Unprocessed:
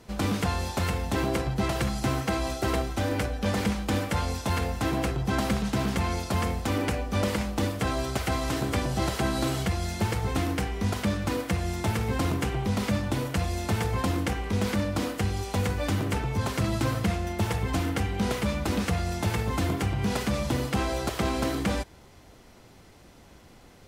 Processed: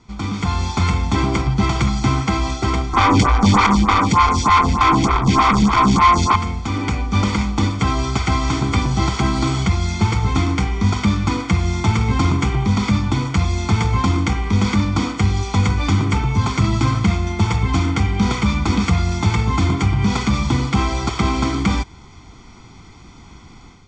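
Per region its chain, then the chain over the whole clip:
2.93–6.36 s: peaking EQ 1.1 kHz +12 dB 0.5 oct + waveshaping leveller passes 5 + lamp-driven phase shifter 3.3 Hz
whole clip: steep low-pass 7.4 kHz 48 dB/octave; comb 0.9 ms, depth 79%; level rider gain up to 9 dB; trim -1.5 dB

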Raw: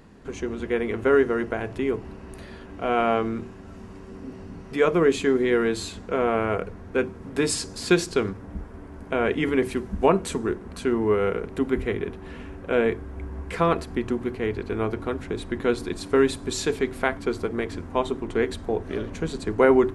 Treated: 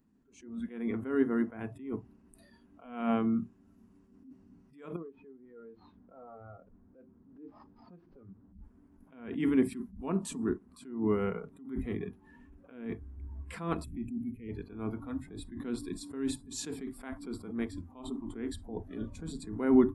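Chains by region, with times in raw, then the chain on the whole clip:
4.96–8.54 s: CVSD coder 32 kbps + low-pass 1.4 kHz + compression 5:1, threshold -34 dBFS
13.84–14.49 s: high-order bell 1.1 kHz -11.5 dB + upward compressor, threshold -28 dBFS + static phaser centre 2 kHz, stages 4
whole clip: spectral noise reduction 17 dB; ten-band graphic EQ 250 Hz +12 dB, 500 Hz -7 dB, 2 kHz -3 dB, 4 kHz -3 dB, 8 kHz +3 dB; attacks held to a fixed rise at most 100 dB/s; trim -7.5 dB

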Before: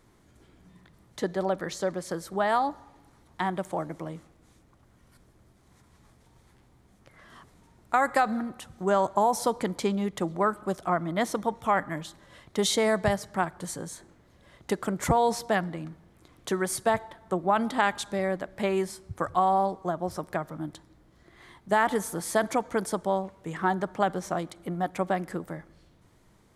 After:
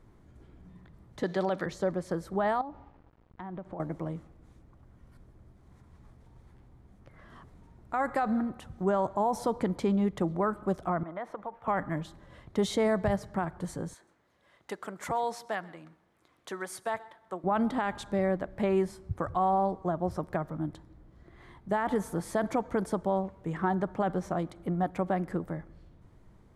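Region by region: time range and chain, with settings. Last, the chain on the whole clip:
1.23–1.66 s: high-pass 130 Hz + peaking EQ 4.1 kHz +13 dB 2.6 oct
2.61–3.80 s: compression 4:1, threshold -36 dBFS + small samples zeroed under -54 dBFS + tape spacing loss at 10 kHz 25 dB
11.03–11.68 s: small samples zeroed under -51.5 dBFS + three-band isolator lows -17 dB, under 500 Hz, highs -20 dB, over 2.3 kHz + compression 4:1, threshold -32 dBFS
13.94–17.44 s: high-pass 1.3 kHz 6 dB/octave + delay 131 ms -22.5 dB
whole clip: bass shelf 120 Hz +8.5 dB; peak limiter -17.5 dBFS; treble shelf 2.5 kHz -12 dB

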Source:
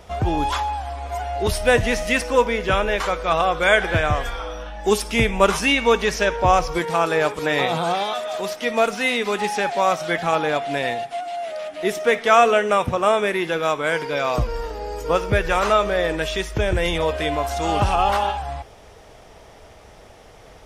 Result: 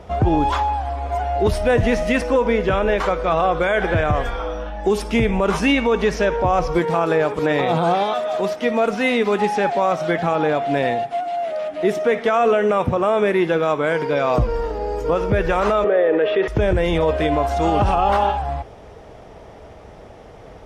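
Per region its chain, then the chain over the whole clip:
15.84–16.48 s: cabinet simulation 430–2600 Hz, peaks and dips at 450 Hz +9 dB, 640 Hz -4 dB, 1 kHz -8 dB, 1.5 kHz -4 dB, 2.3 kHz -6 dB + level flattener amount 70%
whole clip: high-pass 260 Hz 6 dB/octave; tilt EQ -3.5 dB/octave; peak limiter -12 dBFS; trim +3.5 dB

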